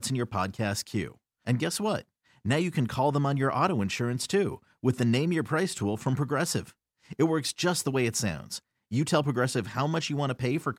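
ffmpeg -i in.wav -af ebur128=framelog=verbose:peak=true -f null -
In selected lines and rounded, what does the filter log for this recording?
Integrated loudness:
  I:         -28.4 LUFS
  Threshold: -38.7 LUFS
Loudness range:
  LRA:         1.8 LU
  Threshold: -48.4 LUFS
  LRA low:   -29.3 LUFS
  LRA high:  -27.5 LUFS
True peak:
  Peak:      -11.5 dBFS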